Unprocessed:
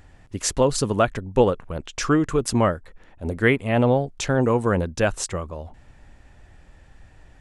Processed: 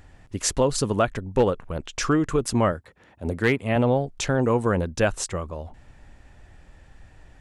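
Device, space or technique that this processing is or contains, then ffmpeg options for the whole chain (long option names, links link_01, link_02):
clipper into limiter: -filter_complex "[0:a]asettb=1/sr,asplit=3[link_01][link_02][link_03];[link_01]atrim=end=2.724[link_04];[link_02]atrim=start=2.72:end=3.76,asetpts=PTS-STARTPTS,afade=type=in:duration=0.004:curve=qsin,afade=type=out:start_time=1.036:duration=0.004:curve=qsin,highpass=frequency=68:width=0.5412,highpass=frequency=68:width=1.3066[link_05];[link_03]atrim=start=3.756[link_06];[link_04][link_05]acrossfade=duration=0.004:curve1=hsin:curve2=qsin[link_07];[link_07][link_06]acrossfade=duration=0.004:curve1=qsin:curve2=hsin,asoftclip=type=hard:threshold=-8.5dB,alimiter=limit=-11dB:level=0:latency=1:release=240"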